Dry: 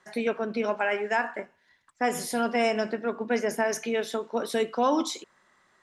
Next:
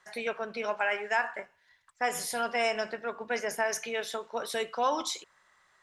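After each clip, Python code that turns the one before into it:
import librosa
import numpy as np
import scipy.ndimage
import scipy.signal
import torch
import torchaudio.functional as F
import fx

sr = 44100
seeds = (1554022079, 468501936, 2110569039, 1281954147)

y = fx.peak_eq(x, sr, hz=260.0, db=-14.5, octaves=1.5)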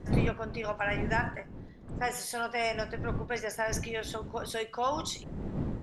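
y = fx.dmg_wind(x, sr, seeds[0], corner_hz=220.0, level_db=-34.0)
y = F.gain(torch.from_numpy(y), -2.5).numpy()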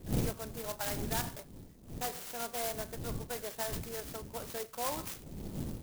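y = fx.clock_jitter(x, sr, seeds[1], jitter_ms=0.13)
y = F.gain(torch.from_numpy(y), -5.5).numpy()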